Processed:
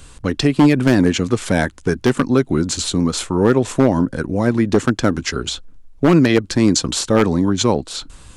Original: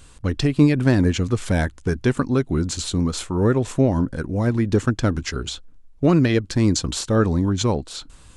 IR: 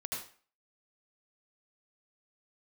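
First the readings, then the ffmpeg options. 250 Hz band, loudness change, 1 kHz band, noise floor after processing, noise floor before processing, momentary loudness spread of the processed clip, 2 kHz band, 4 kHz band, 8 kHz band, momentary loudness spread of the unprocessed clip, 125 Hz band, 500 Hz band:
+4.5 dB, +4.0 dB, +6.5 dB, −43 dBFS, −48 dBFS, 9 LU, +5.5 dB, +6.0 dB, +6.0 dB, 9 LU, 0.0 dB, +5.5 dB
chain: -filter_complex "[0:a]acrossover=split=150[link_01][link_02];[link_01]acompressor=threshold=-36dB:ratio=6[link_03];[link_03][link_02]amix=inputs=2:normalize=0,aeval=exprs='0.316*(abs(mod(val(0)/0.316+3,4)-2)-1)':channel_layout=same,volume=6dB"

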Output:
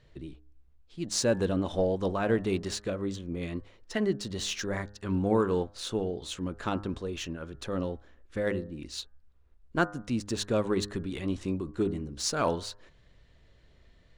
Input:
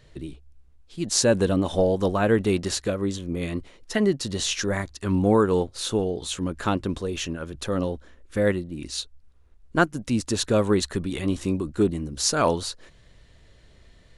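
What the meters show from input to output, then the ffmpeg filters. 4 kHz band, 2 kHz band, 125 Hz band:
−7.0 dB, −6.5 dB, −6.5 dB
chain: -af "adynamicsmooth=sensitivity=3.5:basefreq=6400,bandreject=frequency=102.2:width_type=h:width=4,bandreject=frequency=204.4:width_type=h:width=4,bandreject=frequency=306.6:width_type=h:width=4,bandreject=frequency=408.8:width_type=h:width=4,bandreject=frequency=511:width_type=h:width=4,bandreject=frequency=613.2:width_type=h:width=4,bandreject=frequency=715.4:width_type=h:width=4,bandreject=frequency=817.6:width_type=h:width=4,bandreject=frequency=919.8:width_type=h:width=4,bandreject=frequency=1022:width_type=h:width=4,bandreject=frequency=1124.2:width_type=h:width=4,bandreject=frequency=1226.4:width_type=h:width=4,bandreject=frequency=1328.6:width_type=h:width=4,bandreject=frequency=1430.8:width_type=h:width=4,bandreject=frequency=1533:width_type=h:width=4,bandreject=frequency=1635.2:width_type=h:width=4,bandreject=frequency=1737.4:width_type=h:width=4,bandreject=frequency=1839.6:width_type=h:width=4,volume=-6dB"

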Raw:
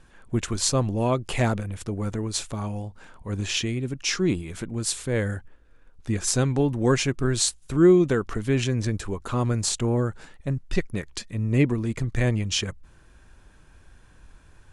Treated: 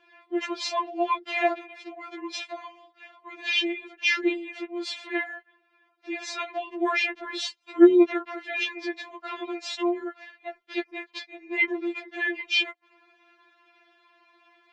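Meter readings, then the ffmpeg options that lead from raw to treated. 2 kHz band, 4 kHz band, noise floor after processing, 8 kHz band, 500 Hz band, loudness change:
+6.0 dB, 0.0 dB, −68 dBFS, −16.5 dB, −2.0 dB, −1.5 dB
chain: -af "highpass=frequency=240:width=0.5412,highpass=frequency=240:width=1.3066,equalizer=frequency=340:width_type=q:width=4:gain=-8,equalizer=frequency=620:width_type=q:width=4:gain=4,equalizer=frequency=1300:width_type=q:width=4:gain=-5,equalizer=frequency=2200:width_type=q:width=4:gain=7,lowpass=frequency=4000:width=0.5412,lowpass=frequency=4000:width=1.3066,afftfilt=real='re*4*eq(mod(b,16),0)':imag='im*4*eq(mod(b,16),0)':win_size=2048:overlap=0.75,volume=4.5dB"

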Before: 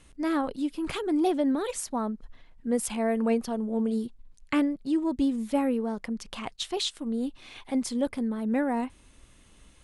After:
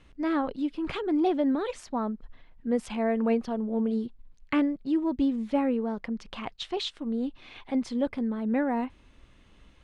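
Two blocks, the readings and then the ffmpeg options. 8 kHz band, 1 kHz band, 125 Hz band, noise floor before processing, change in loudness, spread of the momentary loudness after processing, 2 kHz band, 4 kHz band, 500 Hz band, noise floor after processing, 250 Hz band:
below −10 dB, 0.0 dB, can't be measured, −56 dBFS, 0.0 dB, 10 LU, −0.5 dB, −3.0 dB, 0.0 dB, −57 dBFS, 0.0 dB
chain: -af "lowpass=3700"

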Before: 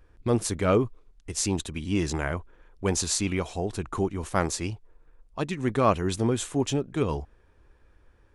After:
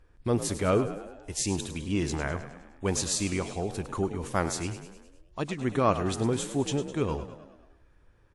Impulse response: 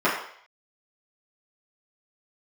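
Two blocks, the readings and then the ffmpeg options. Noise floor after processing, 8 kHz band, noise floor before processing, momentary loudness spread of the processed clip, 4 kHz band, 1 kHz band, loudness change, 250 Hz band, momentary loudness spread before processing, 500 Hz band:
−61 dBFS, −2.0 dB, −60 dBFS, 11 LU, −2.0 dB, −2.0 dB, −2.0 dB, −2.0 dB, 10 LU, −2.0 dB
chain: -filter_complex "[0:a]asplit=7[link_01][link_02][link_03][link_04][link_05][link_06][link_07];[link_02]adelay=103,afreqshift=42,volume=-12dB[link_08];[link_03]adelay=206,afreqshift=84,volume=-17.2dB[link_09];[link_04]adelay=309,afreqshift=126,volume=-22.4dB[link_10];[link_05]adelay=412,afreqshift=168,volume=-27.6dB[link_11];[link_06]adelay=515,afreqshift=210,volume=-32.8dB[link_12];[link_07]adelay=618,afreqshift=252,volume=-38dB[link_13];[link_01][link_08][link_09][link_10][link_11][link_12][link_13]amix=inputs=7:normalize=0,volume=-2.5dB" -ar 48000 -c:a wmav2 -b:a 64k

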